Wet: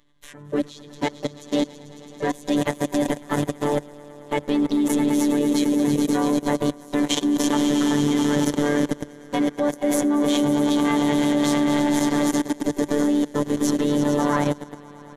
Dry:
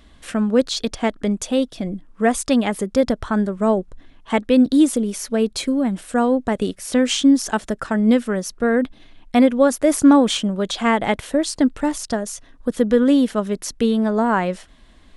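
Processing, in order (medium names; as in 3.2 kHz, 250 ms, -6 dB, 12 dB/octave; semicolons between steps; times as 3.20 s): on a send: echo with a slow build-up 110 ms, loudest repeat 5, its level -10 dB; on the sum: robot voice 146 Hz; level held to a coarse grid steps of 22 dB; harmony voices -5 st -10 dB, +5 st -11 dB; rippled EQ curve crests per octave 1.1, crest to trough 6 dB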